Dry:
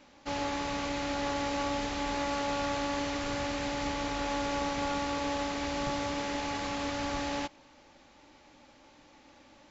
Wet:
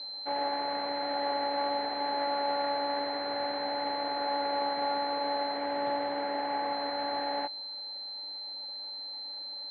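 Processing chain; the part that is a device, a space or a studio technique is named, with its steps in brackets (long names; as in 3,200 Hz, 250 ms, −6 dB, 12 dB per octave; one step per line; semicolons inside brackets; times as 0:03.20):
toy sound module (linearly interpolated sample-rate reduction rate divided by 6×; switching amplifier with a slow clock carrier 4,100 Hz; loudspeaker in its box 700–4,500 Hz, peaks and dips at 760 Hz +4 dB, 1,200 Hz −9 dB, 1,900 Hz +3 dB, 2,700 Hz −5 dB, 4,100 Hz +5 dB)
spectral tilt −2.5 dB per octave
0:05.52–0:06.73: double-tracking delay 46 ms −7 dB
level +5 dB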